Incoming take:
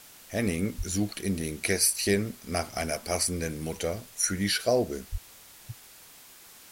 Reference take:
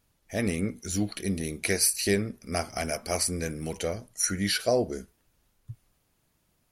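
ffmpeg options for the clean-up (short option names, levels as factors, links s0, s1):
-filter_complex "[0:a]asplit=3[s0][s1][s2];[s0]afade=t=out:st=0.77:d=0.02[s3];[s1]highpass=f=140:w=0.5412,highpass=f=140:w=1.3066,afade=t=in:st=0.77:d=0.02,afade=t=out:st=0.89:d=0.02[s4];[s2]afade=t=in:st=0.89:d=0.02[s5];[s3][s4][s5]amix=inputs=3:normalize=0,asplit=3[s6][s7][s8];[s6]afade=t=out:st=5.11:d=0.02[s9];[s7]highpass=f=140:w=0.5412,highpass=f=140:w=1.3066,afade=t=in:st=5.11:d=0.02,afade=t=out:st=5.23:d=0.02[s10];[s8]afade=t=in:st=5.23:d=0.02[s11];[s9][s10][s11]amix=inputs=3:normalize=0,afwtdn=0.0032,asetnsamples=n=441:p=0,asendcmd='5.72 volume volume 8dB',volume=1"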